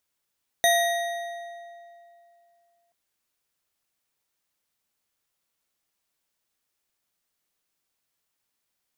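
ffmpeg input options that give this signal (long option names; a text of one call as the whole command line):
ffmpeg -f lavfi -i "aevalsrc='0.119*pow(10,-3*t/2.69)*sin(2*PI*688*t)+0.0891*pow(10,-3*t/1.984)*sin(2*PI*1896.8*t)+0.0668*pow(10,-3*t/1.622)*sin(2*PI*3718*t)+0.0501*pow(10,-3*t/1.395)*sin(2*PI*6145.9*t)+0.0376*pow(10,-3*t/1.237)*sin(2*PI*9177.9*t)+0.0282*pow(10,-3*t/1.118)*sin(2*PI*12824.3*t)':duration=2.28:sample_rate=44100" out.wav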